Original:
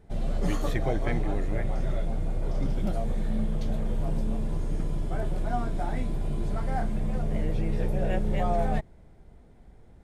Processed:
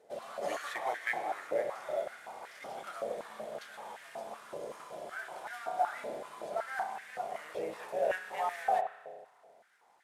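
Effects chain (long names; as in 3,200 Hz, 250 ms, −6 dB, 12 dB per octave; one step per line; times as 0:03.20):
variable-slope delta modulation 64 kbit/s
spring reverb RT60 1.4 s, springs 31 ms, chirp 65 ms, DRR 6 dB
high-pass on a step sequencer 5.3 Hz 530–1,800 Hz
level −5 dB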